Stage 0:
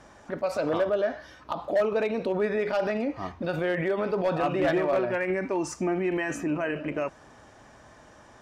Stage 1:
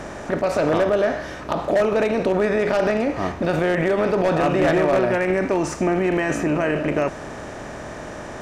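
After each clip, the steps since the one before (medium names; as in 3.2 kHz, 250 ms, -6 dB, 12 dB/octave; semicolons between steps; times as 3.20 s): spectral levelling over time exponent 0.6; bass shelf 110 Hz +9.5 dB; trim +3 dB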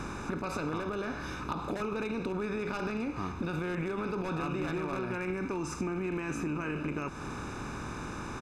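comb 0.8 ms, depth 80%; compression 4:1, threshold -26 dBFS, peak gain reduction 10.5 dB; trim -6 dB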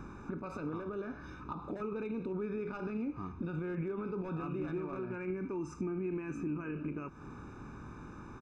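spectral contrast expander 1.5:1; trim -6.5 dB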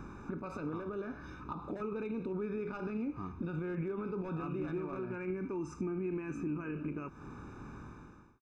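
fade out at the end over 0.63 s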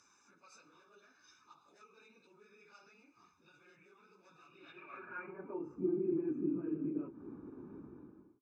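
phase randomisation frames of 50 ms; band-pass sweep 6 kHz -> 320 Hz, 4.43–5.84 s; trim +4.5 dB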